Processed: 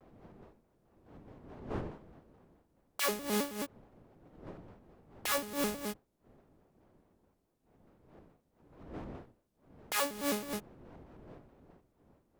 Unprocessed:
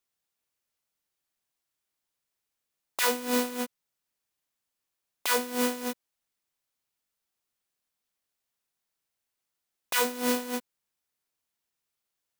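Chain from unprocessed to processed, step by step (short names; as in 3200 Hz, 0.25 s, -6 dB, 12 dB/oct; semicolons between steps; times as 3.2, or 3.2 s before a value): wind noise 440 Hz -46 dBFS; shaped vibrato square 4.7 Hz, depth 250 cents; gain -6 dB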